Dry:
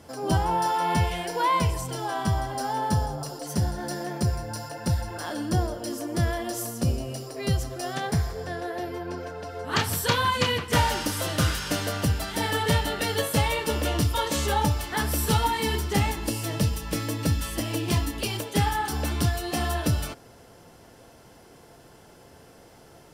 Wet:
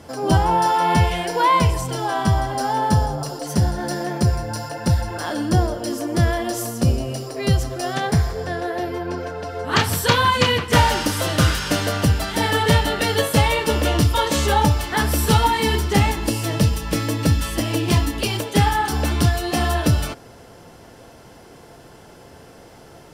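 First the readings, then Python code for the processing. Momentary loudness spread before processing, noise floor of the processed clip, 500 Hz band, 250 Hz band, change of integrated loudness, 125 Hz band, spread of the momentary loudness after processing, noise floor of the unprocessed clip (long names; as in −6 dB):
9 LU, −45 dBFS, +7.0 dB, +7.0 dB, +6.5 dB, +7.0 dB, 9 LU, −52 dBFS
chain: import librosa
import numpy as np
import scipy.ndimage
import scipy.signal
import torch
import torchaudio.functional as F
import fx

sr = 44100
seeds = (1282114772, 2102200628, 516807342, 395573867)

y = fx.high_shelf(x, sr, hz=7800.0, db=-5.0)
y = y * librosa.db_to_amplitude(7.0)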